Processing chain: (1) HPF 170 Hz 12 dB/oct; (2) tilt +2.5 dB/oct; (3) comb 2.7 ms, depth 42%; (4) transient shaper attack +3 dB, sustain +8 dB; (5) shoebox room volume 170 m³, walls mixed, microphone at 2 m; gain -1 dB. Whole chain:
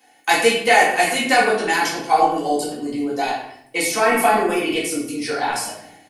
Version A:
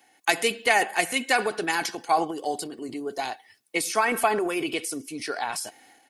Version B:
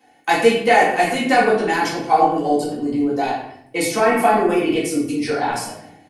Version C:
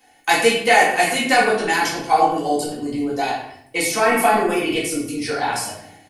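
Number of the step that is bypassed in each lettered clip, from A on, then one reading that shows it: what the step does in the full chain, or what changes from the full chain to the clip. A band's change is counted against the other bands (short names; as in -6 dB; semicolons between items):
5, echo-to-direct 6.5 dB to none; 2, 125 Hz band +7.0 dB; 1, 125 Hz band +3.5 dB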